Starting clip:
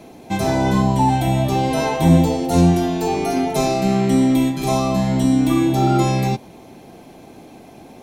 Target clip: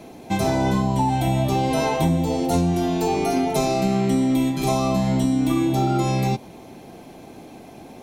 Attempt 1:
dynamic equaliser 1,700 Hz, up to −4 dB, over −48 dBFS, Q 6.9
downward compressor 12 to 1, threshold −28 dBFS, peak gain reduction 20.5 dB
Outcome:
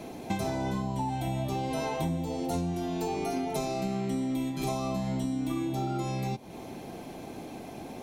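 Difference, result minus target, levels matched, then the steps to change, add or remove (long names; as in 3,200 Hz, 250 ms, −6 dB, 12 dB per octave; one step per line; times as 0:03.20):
downward compressor: peak gain reduction +11 dB
change: downward compressor 12 to 1, threshold −16 dBFS, peak gain reduction 9.5 dB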